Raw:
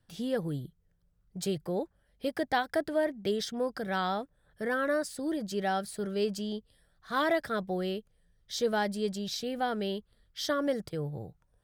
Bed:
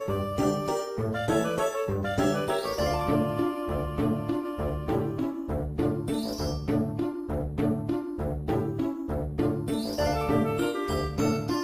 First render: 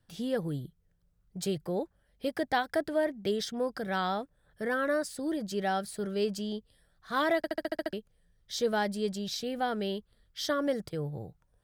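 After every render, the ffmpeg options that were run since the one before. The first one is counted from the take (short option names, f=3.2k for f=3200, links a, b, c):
-filter_complex "[0:a]asplit=9[a][b][c][d][e][f][g][h][i];[a]atrim=end=7.442[j];[b]atrim=start=7.368:end=7.442[k];[c]atrim=start=7.368:end=7.442[l];[d]atrim=start=7.368:end=7.442[m];[e]atrim=start=7.368:end=7.442[n];[f]atrim=start=7.368:end=7.442[o];[g]atrim=start=7.368:end=7.442[p];[h]atrim=start=7.368:end=7.442[q];[i]atrim=start=7.928[r];[j][k]acrossfade=d=0.004:c1=hsin:c2=hsin[s];[s][l]acrossfade=d=0.004:c1=hsin:c2=hsin[t];[t][m]acrossfade=d=0.004:c1=hsin:c2=hsin[u];[u][n]acrossfade=d=0.004:c1=hsin:c2=hsin[v];[v][o]acrossfade=d=0.004:c1=hsin:c2=hsin[w];[w][p]acrossfade=d=0.004:c1=hsin:c2=hsin[x];[x][q]acrossfade=d=0.004:c1=hsin:c2=hsin[y];[y][r]acrossfade=d=0.004:c1=hsin:c2=hsin"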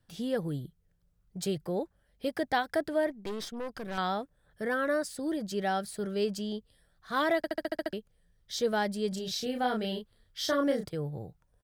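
-filter_complex "[0:a]asettb=1/sr,asplit=3[a][b][c];[a]atrim=end=3.104[d];[b]atrim=start=3.1:end=3.98,asetpts=PTS-STARTPTS,afade=t=in:d=0.004:c=qsin,afade=t=out:st=0.876:d=0.004:c=qsin,aeval=exprs='(tanh(44.7*val(0)+0.65)-tanh(0.65))/44.7':c=same[e];[c]atrim=start=3.976[f];[d][e]acrossfade=d=0.004:c1=hsin:c2=qsin[g];[g][f]acrossfade=d=0.004:c1=qsin:c2=hsin,asplit=3[h][i][j];[h]afade=t=out:st=9.11:d=0.02[k];[i]asplit=2[l][m];[m]adelay=32,volume=-4dB[n];[l][n]amix=inputs=2:normalize=0,afade=t=in:st=9.11:d=0.02,afade=t=out:st=10.88:d=0.02[o];[j]afade=t=in:st=10.88:d=0.02[p];[k][o][p]amix=inputs=3:normalize=0"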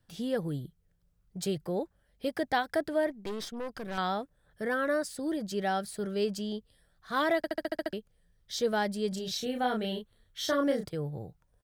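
-filter_complex "[0:a]asettb=1/sr,asplit=3[a][b][c];[a]atrim=end=9.374[d];[b]atrim=start=9.37:end=10.48,asetpts=PTS-STARTPTS,afade=t=in:d=0.004:c=qsin,afade=t=out:st=1.106:d=0.004:c=qsin,asuperstop=centerf=4900:order=4:qfactor=6.7[e];[c]atrim=start=10.476[f];[d][e]acrossfade=d=0.004:c1=hsin:c2=qsin[g];[g][f]acrossfade=d=0.004:c1=qsin:c2=hsin"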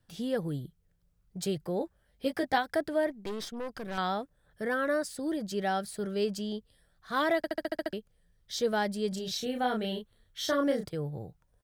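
-filter_complex "[0:a]asettb=1/sr,asplit=3[a][b][c];[a]atrim=end=1.794[d];[b]atrim=start=1.79:end=2.58,asetpts=PTS-STARTPTS,afade=t=in:d=0.004:c=qsin,afade=t=out:st=0.786:d=0.004:c=qsin,asplit=2[e][f];[f]adelay=15,volume=-5dB[g];[e][g]amix=inputs=2:normalize=0,atrim=end_sample=34839[h];[c]atrim=start=2.576[i];[d][h]acrossfade=d=0.004:c1=hsin:c2=qsin[j];[j][i]acrossfade=d=0.004:c1=qsin:c2=hsin"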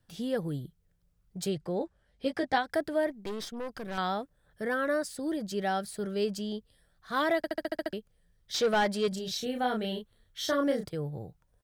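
-filter_complex "[0:a]asettb=1/sr,asplit=3[a][b][c];[a]atrim=end=1.494[d];[b]atrim=start=1.49:end=2.7,asetpts=PTS-STARTPTS,afade=t=in:d=0.004:c=qsin,afade=t=out:st=1.206:d=0.004:c=qsin,lowpass=7.7k[e];[c]atrim=start=2.696[f];[d][e]acrossfade=d=0.004:c1=hsin:c2=qsin[g];[g][f]acrossfade=d=0.004:c1=qsin:c2=hsin,asettb=1/sr,asplit=3[h][i][j];[h]atrim=end=8.544[k];[i]atrim=start=8.54:end=9.08,asetpts=PTS-STARTPTS,afade=t=in:d=0.004:c=qsin,afade=t=out:st=0.536:d=0.004:c=qsin,asplit=2[l][m];[m]highpass=f=720:p=1,volume=17dB,asoftclip=type=tanh:threshold=-18dB[n];[l][n]amix=inputs=2:normalize=0,lowpass=f=3.4k:p=1,volume=-6dB[o];[j]atrim=start=9.076[p];[k][o]acrossfade=d=0.004:c1=hsin:c2=qsin[q];[q][p]acrossfade=d=0.004:c1=qsin:c2=hsin"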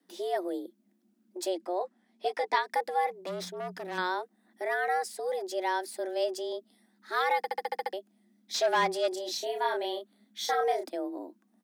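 -af "afreqshift=180"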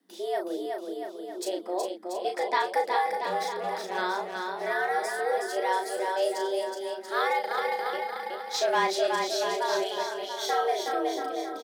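-filter_complex "[0:a]asplit=2[a][b];[b]adelay=36,volume=-5dB[c];[a][c]amix=inputs=2:normalize=0,aecho=1:1:370|684.5|951.8|1179|1372:0.631|0.398|0.251|0.158|0.1"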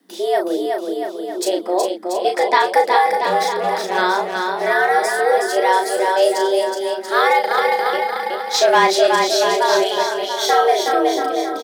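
-af "volume=12dB,alimiter=limit=-3dB:level=0:latency=1"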